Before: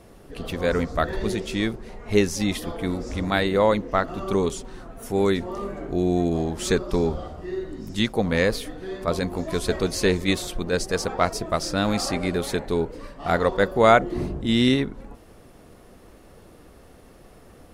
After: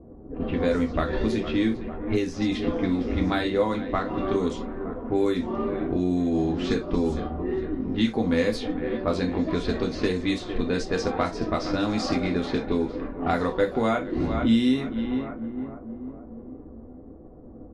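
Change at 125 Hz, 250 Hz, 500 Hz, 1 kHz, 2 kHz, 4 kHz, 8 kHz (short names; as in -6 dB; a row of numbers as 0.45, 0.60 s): -2.5, +1.5, -3.0, -4.5, -5.5, -5.0, -12.0 dB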